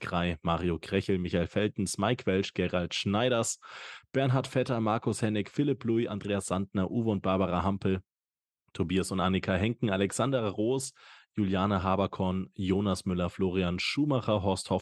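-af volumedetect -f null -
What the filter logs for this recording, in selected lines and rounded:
mean_volume: -29.6 dB
max_volume: -12.5 dB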